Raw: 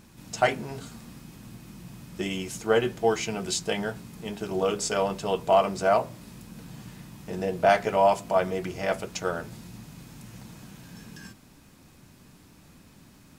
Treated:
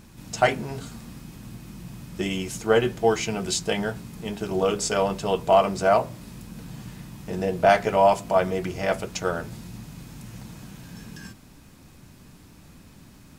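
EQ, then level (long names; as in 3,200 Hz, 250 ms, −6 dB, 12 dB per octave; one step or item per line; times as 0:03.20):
low-shelf EQ 100 Hz +6 dB
+2.5 dB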